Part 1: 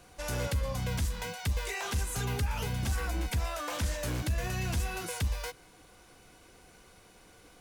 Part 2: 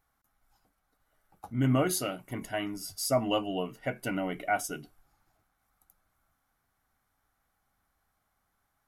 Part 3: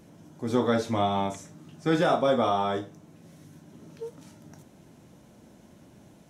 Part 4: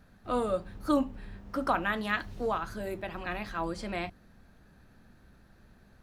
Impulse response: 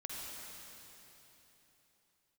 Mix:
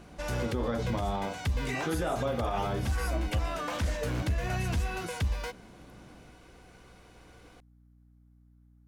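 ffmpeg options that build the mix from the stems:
-filter_complex "[0:a]volume=2.5dB[link_01];[1:a]volume=-12.5dB[link_02];[2:a]volume=-1dB[link_03];[link_01][link_03]amix=inputs=2:normalize=0,lowpass=frequency=3300:poles=1,alimiter=limit=-22dB:level=0:latency=1:release=122,volume=0dB[link_04];[link_02][link_04]amix=inputs=2:normalize=0,aeval=exprs='val(0)+0.00126*(sin(2*PI*60*n/s)+sin(2*PI*2*60*n/s)/2+sin(2*PI*3*60*n/s)/3+sin(2*PI*4*60*n/s)/4+sin(2*PI*5*60*n/s)/5)':channel_layout=same"

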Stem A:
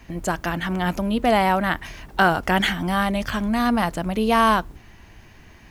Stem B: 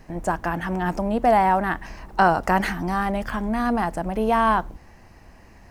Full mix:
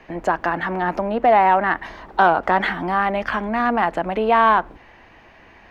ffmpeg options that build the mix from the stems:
ffmpeg -i stem1.wav -i stem2.wav -filter_complex "[0:a]volume=0.5dB[link_01];[1:a]highshelf=frequency=3500:width_type=q:width=1.5:gain=-11.5,acontrast=69,volume=-3.5dB,asplit=2[link_02][link_03];[link_03]apad=whole_len=251592[link_04];[link_01][link_04]sidechaincompress=threshold=-25dB:ratio=8:attack=33:release=123[link_05];[link_05][link_02]amix=inputs=2:normalize=0,acrossover=split=290 4500:gain=0.224 1 0.126[link_06][link_07][link_08];[link_06][link_07][link_08]amix=inputs=3:normalize=0" out.wav

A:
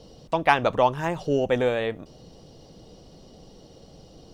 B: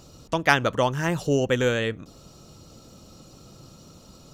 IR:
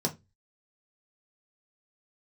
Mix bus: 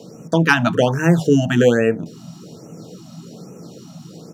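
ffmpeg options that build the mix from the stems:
-filter_complex "[0:a]lowshelf=frequency=280:gain=10,volume=1dB,asplit=2[link_01][link_02];[link_02]volume=-11.5dB[link_03];[1:a]dynaudnorm=framelen=110:gausssize=3:maxgain=3dB,adelay=0.5,volume=1dB[link_04];[2:a]atrim=start_sample=2205[link_05];[link_03][link_05]afir=irnorm=-1:irlink=0[link_06];[link_01][link_04][link_06]amix=inputs=3:normalize=0,highpass=frequency=130:width=0.5412,highpass=frequency=130:width=1.3066,afftfilt=real='re*(1-between(b*sr/1024,390*pow(4100/390,0.5+0.5*sin(2*PI*1.2*pts/sr))/1.41,390*pow(4100/390,0.5+0.5*sin(2*PI*1.2*pts/sr))*1.41))':imag='im*(1-between(b*sr/1024,390*pow(4100/390,0.5+0.5*sin(2*PI*1.2*pts/sr))/1.41,390*pow(4100/390,0.5+0.5*sin(2*PI*1.2*pts/sr))*1.41))':win_size=1024:overlap=0.75"

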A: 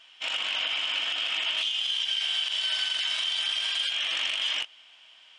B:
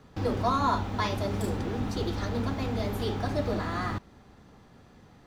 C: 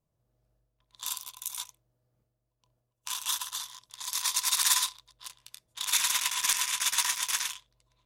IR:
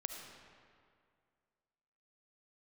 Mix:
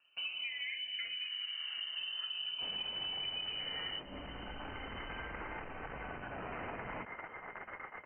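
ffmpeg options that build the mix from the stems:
-filter_complex "[0:a]volume=30.5dB,asoftclip=hard,volume=-30.5dB,adelay=2400,volume=-2.5dB[link_01];[1:a]highpass=51,asubboost=boost=5:cutoff=160,asplit=2[link_02][link_03];[link_03]afreqshift=0.4[link_04];[link_02][link_04]amix=inputs=2:normalize=1,volume=-3.5dB,asplit=2[link_05][link_06];[2:a]acompressor=threshold=-35dB:ratio=12,adelay=750,volume=0dB[link_07];[link_06]apad=whole_len=388474[link_08];[link_07][link_08]sidechaincompress=threshold=-42dB:ratio=8:attack=16:release=919[link_09];[link_01][link_05][link_09]amix=inputs=3:normalize=0,agate=range=-9dB:threshold=-50dB:ratio=16:detection=peak,lowpass=frequency=2600:width_type=q:width=0.5098,lowpass=frequency=2600:width_type=q:width=0.6013,lowpass=frequency=2600:width_type=q:width=0.9,lowpass=frequency=2600:width_type=q:width=2.563,afreqshift=-3100,acompressor=threshold=-38dB:ratio=6"

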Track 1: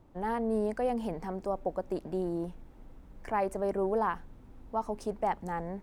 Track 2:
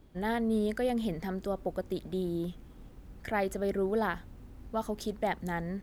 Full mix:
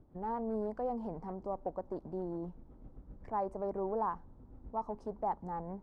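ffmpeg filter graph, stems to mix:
ffmpeg -i stem1.wav -i stem2.wav -filter_complex "[0:a]adynamicequalizer=threshold=0.00562:dfrequency=970:dqfactor=1.6:tfrequency=970:tqfactor=1.6:attack=5:release=100:ratio=0.375:range=3.5:mode=boostabove:tftype=bell,aexciter=amount=6.9:drive=6.9:freq=3900,volume=-7dB,asplit=2[link_01][link_02];[1:a]tremolo=f=7.7:d=0.9,aeval=exprs='0.0178*(abs(mod(val(0)/0.0178+3,4)-2)-1)':channel_layout=same,volume=-2dB[link_03];[link_02]apad=whole_len=256853[link_04];[link_03][link_04]sidechaincompress=threshold=-49dB:ratio=3:attack=16:release=345[link_05];[link_01][link_05]amix=inputs=2:normalize=0,lowpass=1000" out.wav

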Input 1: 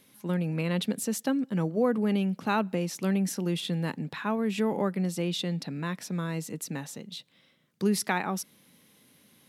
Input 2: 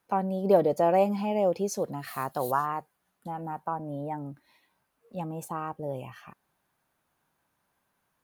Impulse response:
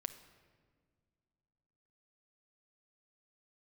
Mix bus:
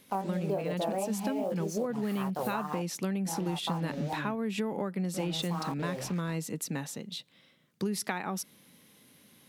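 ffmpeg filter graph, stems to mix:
-filter_complex "[0:a]volume=1dB[link_01];[1:a]acrusher=bits=6:mix=0:aa=0.5,flanger=delay=19.5:depth=6.7:speed=2.6,volume=2dB[link_02];[link_01][link_02]amix=inputs=2:normalize=0,acompressor=threshold=-28dB:ratio=10"

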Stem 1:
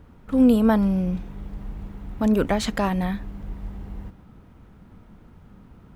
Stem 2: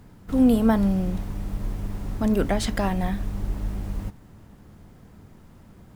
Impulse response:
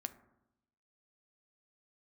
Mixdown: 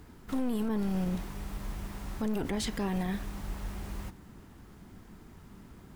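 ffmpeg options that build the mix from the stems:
-filter_complex "[0:a]lowpass=frequency=1400:width=0.5412,lowpass=frequency=1400:width=1.3066,lowshelf=frequency=480:width_type=q:width=3:gain=6.5,aeval=exprs='clip(val(0),-1,0.1)':channel_layout=same,volume=-10.5dB[link_01];[1:a]highpass=780,alimiter=level_in=1.5dB:limit=-24dB:level=0:latency=1:release=72,volume=-1.5dB,volume=0.5dB[link_02];[link_01][link_02]amix=inputs=2:normalize=0,alimiter=limit=-23dB:level=0:latency=1:release=47"

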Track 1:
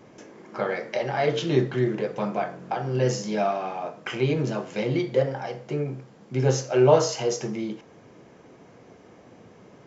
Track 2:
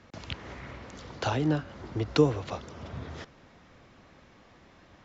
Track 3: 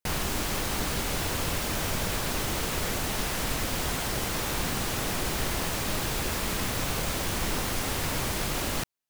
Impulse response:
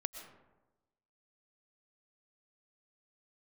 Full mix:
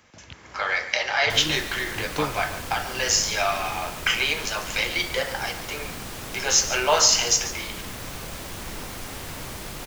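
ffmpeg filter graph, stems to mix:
-filter_complex "[0:a]highpass=1100,tiltshelf=frequency=1500:gain=-5,dynaudnorm=framelen=110:gausssize=9:maxgain=10.5dB,volume=0dB,asplit=2[link_01][link_02];[link_02]volume=-14dB[link_03];[1:a]volume=-6.5dB[link_04];[2:a]adelay=1250,volume=-6dB[link_05];[link_03]aecho=0:1:143:1[link_06];[link_01][link_04][link_05][link_06]amix=inputs=4:normalize=0"

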